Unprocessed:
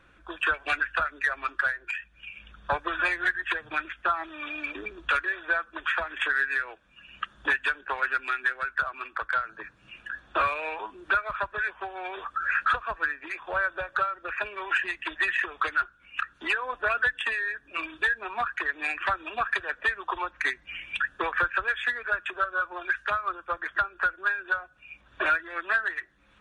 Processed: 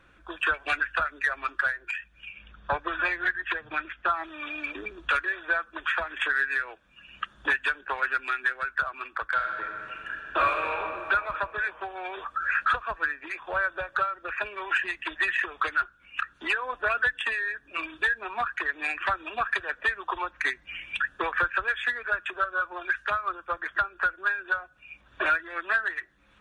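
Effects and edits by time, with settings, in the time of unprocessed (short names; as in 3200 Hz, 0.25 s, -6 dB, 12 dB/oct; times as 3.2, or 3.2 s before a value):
2.32–4.05 air absorption 110 m
9.25–10.8 reverb throw, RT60 3 s, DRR 2 dB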